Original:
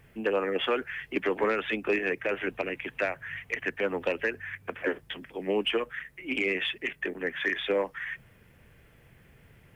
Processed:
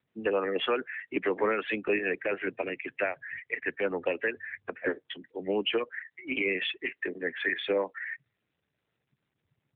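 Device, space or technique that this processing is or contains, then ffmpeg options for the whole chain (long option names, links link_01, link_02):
mobile call with aggressive noise cancelling: -af "highpass=frequency=100:poles=1,afftdn=noise_reduction=31:noise_floor=-39" -ar 8000 -c:a libopencore_amrnb -b:a 12200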